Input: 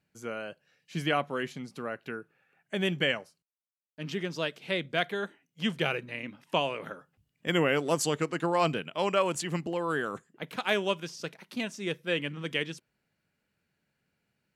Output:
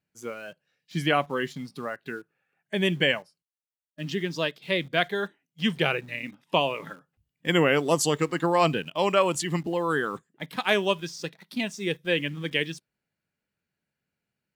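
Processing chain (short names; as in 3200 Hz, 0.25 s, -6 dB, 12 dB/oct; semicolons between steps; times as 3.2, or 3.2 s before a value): spectral noise reduction 9 dB; in parallel at -11.5 dB: bit-crush 8-bit; on the sum: gain +2.5 dB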